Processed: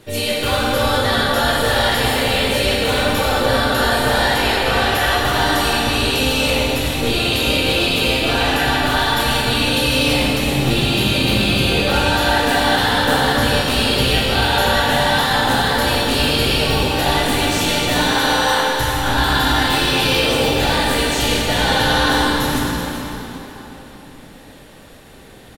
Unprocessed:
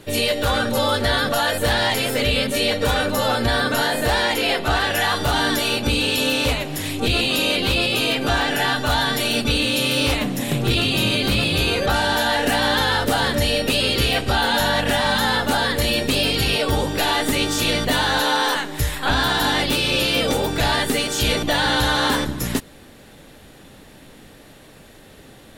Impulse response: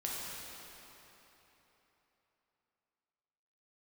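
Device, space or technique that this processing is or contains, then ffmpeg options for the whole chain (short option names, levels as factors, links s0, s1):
cave: -filter_complex "[0:a]asettb=1/sr,asplit=3[s0][s1][s2];[s0]atrim=end=17.854[s3];[s1]atrim=start=17.85:end=18.61,asetpts=PTS-STARTPTS,afade=t=in:d=0.004:c=qsin,afade=t=out:st=0.756:d=0.004:c=qsin,highpass=f=240:w=0.5412,highpass=f=240:w=1.3066[s4];[s2]atrim=start=18.606[s5];[s3][s4]acrossfade=d=0.004:c1=hsin:c2=qsin[s6];[s6][s5]acrossfade=d=0.004:c1=qsin:c2=hsin,aecho=1:1:385:0.266[s7];[1:a]atrim=start_sample=2205[s8];[s7][s8]afir=irnorm=-1:irlink=0"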